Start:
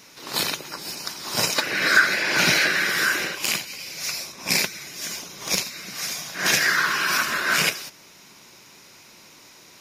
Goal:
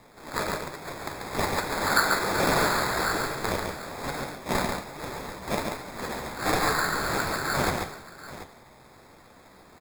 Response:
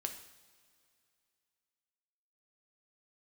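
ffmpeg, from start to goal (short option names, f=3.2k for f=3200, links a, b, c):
-af "equalizer=f=1.2k:t=o:w=0.77:g=-6,acrusher=samples=15:mix=1:aa=0.000001,flanger=delay=6.6:depth=9.4:regen=62:speed=1.2:shape=sinusoidal,aecho=1:1:139|736:0.596|0.178"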